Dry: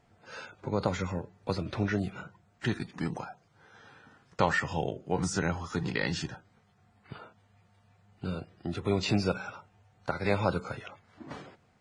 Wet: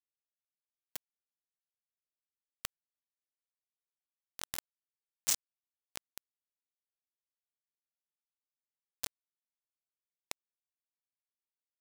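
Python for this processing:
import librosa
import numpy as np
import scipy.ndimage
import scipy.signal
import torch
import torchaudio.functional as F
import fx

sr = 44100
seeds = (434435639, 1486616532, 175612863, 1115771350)

y = fx.bandpass_q(x, sr, hz=7400.0, q=2.6)
y = fx.rider(y, sr, range_db=3, speed_s=0.5)
y = fx.quant_dither(y, sr, seeds[0], bits=6, dither='none')
y = y * librosa.db_to_amplitude(15.0)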